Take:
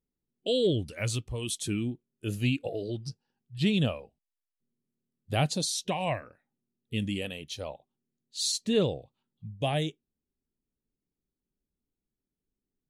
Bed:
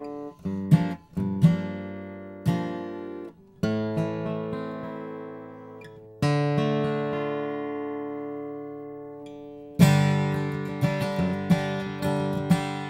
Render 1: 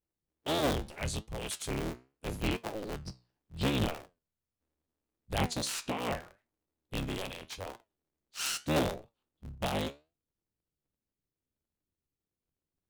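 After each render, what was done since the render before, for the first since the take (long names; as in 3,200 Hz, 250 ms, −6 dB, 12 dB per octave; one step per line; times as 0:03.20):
sub-harmonics by changed cycles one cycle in 3, inverted
flanger 0.77 Hz, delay 8.4 ms, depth 8.4 ms, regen +73%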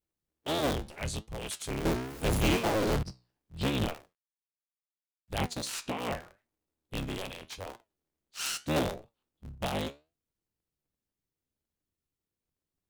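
0:01.85–0:03.03: power curve on the samples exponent 0.35
0:03.93–0:05.73: mu-law and A-law mismatch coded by A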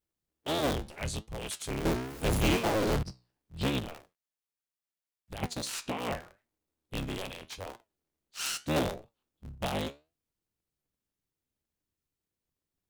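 0:03.79–0:05.43: downward compressor, threshold −36 dBFS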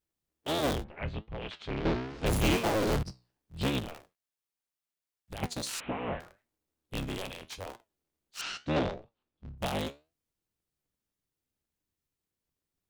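0:00.83–0:02.25: low-pass filter 2,300 Hz → 5,600 Hz 24 dB per octave
0:05.80–0:06.20: linear delta modulator 16 kbit/s, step −39.5 dBFS
0:08.41–0:09.58: Bessel low-pass filter 3,600 Hz, order 4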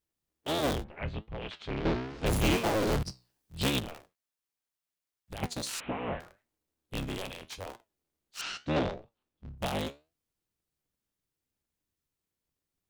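0:03.02–0:03.80: high-shelf EQ 3,100 Hz +9 dB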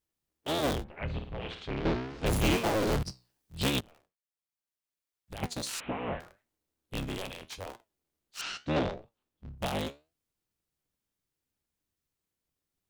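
0:01.04–0:01.65: flutter between parallel walls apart 9.1 metres, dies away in 0.48 s
0:03.81–0:05.53: fade in, from −20 dB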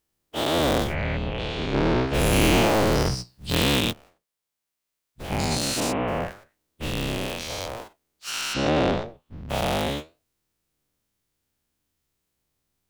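every bin's largest magnitude spread in time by 240 ms
in parallel at −7.5 dB: soft clipping −22.5 dBFS, distortion −12 dB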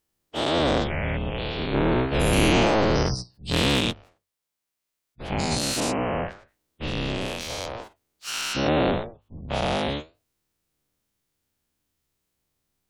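gate on every frequency bin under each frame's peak −30 dB strong
mains-hum notches 50/100 Hz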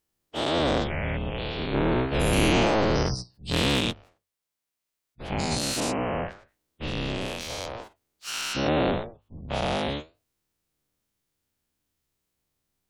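level −2 dB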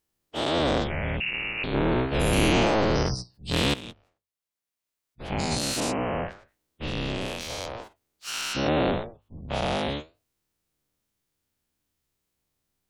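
0:01.20–0:01.64: voice inversion scrambler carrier 2,800 Hz
0:03.74–0:05.28: fade in, from −17 dB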